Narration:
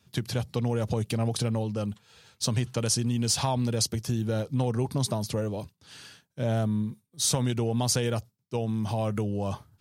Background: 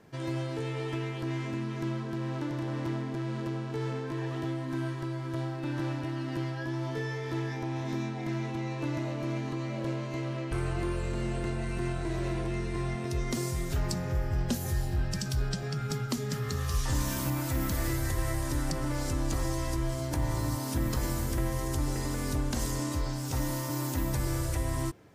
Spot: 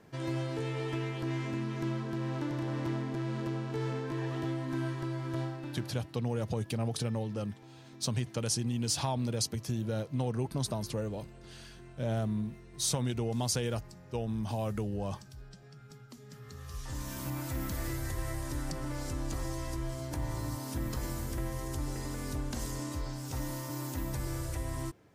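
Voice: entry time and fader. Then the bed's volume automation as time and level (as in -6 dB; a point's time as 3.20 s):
5.60 s, -5.5 dB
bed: 5.42 s -1 dB
6.15 s -19.5 dB
16.12 s -19.5 dB
17.36 s -5.5 dB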